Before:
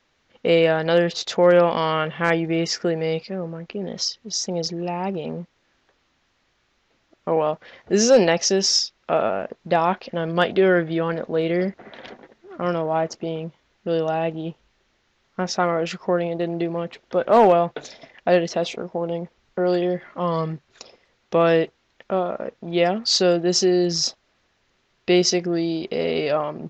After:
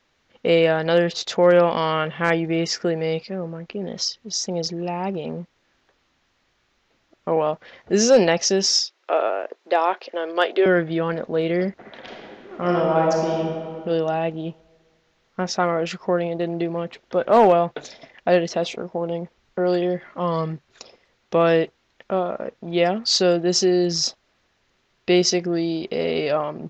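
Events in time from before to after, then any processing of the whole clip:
8.76–10.66 steep high-pass 320 Hz
12.02–13.38 reverb throw, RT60 2.2 s, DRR -2 dB

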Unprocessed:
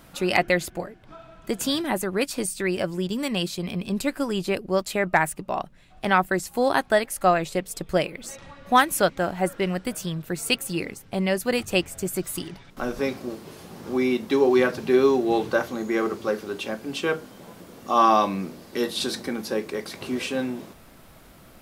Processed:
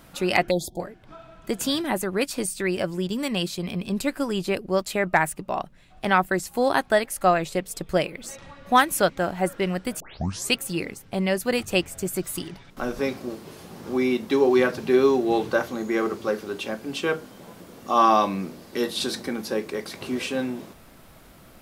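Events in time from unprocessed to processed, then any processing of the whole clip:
0.5–0.79 spectral delete 930–3200 Hz
10 tape start 0.52 s

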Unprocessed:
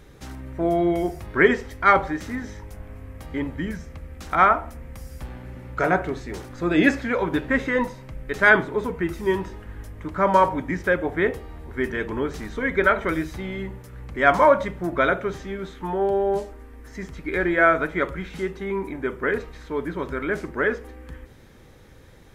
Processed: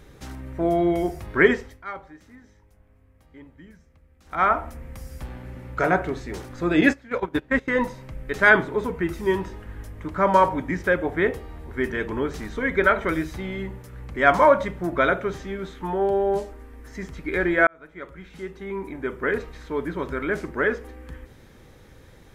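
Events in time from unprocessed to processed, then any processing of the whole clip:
1.49–4.58 dip -18.5 dB, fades 0.34 s linear
6.81–7.68 gate -23 dBFS, range -18 dB
17.67–19.4 fade in

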